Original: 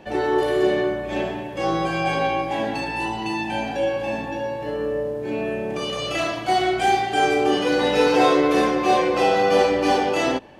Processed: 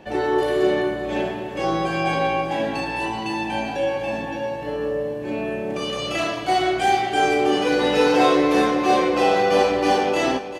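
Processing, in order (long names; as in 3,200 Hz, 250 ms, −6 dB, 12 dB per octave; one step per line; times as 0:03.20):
repeating echo 388 ms, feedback 52%, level −13 dB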